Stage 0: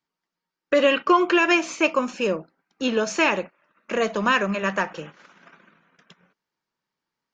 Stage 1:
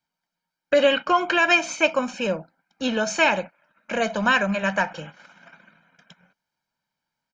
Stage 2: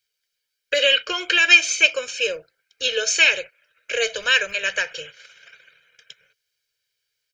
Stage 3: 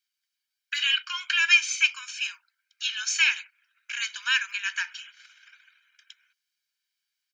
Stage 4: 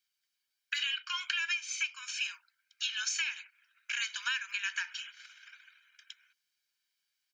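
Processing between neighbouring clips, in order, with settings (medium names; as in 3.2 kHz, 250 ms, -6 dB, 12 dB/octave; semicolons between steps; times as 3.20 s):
comb 1.3 ms, depth 65%
FFT filter 120 Hz 0 dB, 220 Hz -30 dB, 450 Hz +8 dB, 830 Hz -19 dB, 1.6 kHz +4 dB, 2.9 kHz +12 dB; trim -2.5 dB
steep high-pass 890 Hz 96 dB/octave; trim -6 dB
compression 16:1, threshold -30 dBFS, peak gain reduction 17.5 dB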